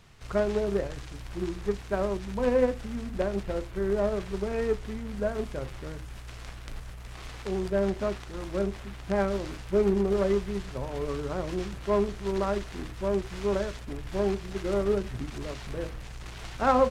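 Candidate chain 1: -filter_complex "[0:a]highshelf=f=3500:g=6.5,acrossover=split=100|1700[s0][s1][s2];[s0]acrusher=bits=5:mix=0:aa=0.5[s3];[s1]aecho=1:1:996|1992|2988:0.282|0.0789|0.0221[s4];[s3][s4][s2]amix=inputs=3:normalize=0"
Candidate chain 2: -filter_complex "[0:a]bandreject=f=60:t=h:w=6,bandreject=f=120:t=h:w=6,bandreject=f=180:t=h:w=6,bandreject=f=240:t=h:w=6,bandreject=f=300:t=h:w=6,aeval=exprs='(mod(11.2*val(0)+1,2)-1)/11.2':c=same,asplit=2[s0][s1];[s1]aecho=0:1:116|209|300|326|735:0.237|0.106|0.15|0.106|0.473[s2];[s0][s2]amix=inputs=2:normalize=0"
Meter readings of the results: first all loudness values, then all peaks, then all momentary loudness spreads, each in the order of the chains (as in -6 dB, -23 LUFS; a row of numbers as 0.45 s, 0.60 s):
-29.5 LUFS, -29.5 LUFS; -9.5 dBFS, -16.5 dBFS; 14 LU, 11 LU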